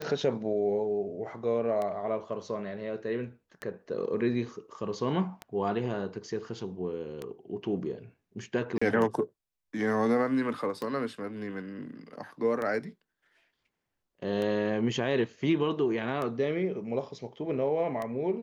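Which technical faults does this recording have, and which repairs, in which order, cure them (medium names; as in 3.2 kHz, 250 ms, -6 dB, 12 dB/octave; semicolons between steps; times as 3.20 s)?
tick 33 1/3 rpm -21 dBFS
8.78–8.81 s: dropout 35 ms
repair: de-click; interpolate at 8.78 s, 35 ms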